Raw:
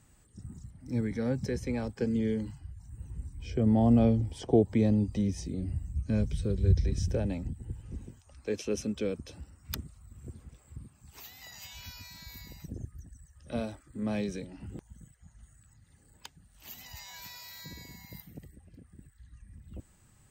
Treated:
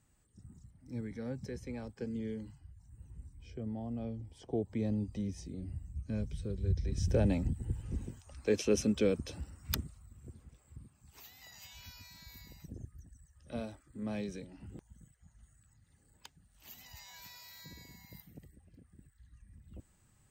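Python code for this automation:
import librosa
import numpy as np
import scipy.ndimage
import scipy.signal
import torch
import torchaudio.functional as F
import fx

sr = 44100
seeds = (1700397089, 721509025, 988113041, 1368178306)

y = fx.gain(x, sr, db=fx.line((3.3, -9.5), (3.89, -18.0), (4.93, -8.0), (6.81, -8.0), (7.22, 3.0), (9.71, 3.0), (10.2, -6.0)))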